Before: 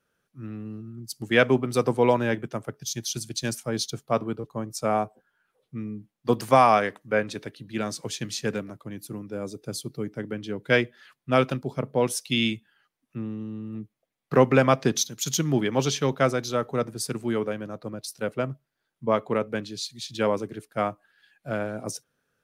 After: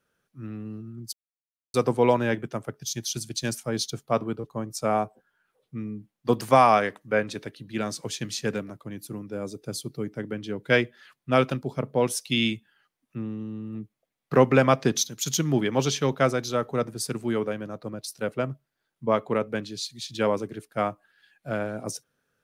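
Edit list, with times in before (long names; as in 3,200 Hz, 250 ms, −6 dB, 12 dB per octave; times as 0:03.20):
0:01.13–0:01.74: silence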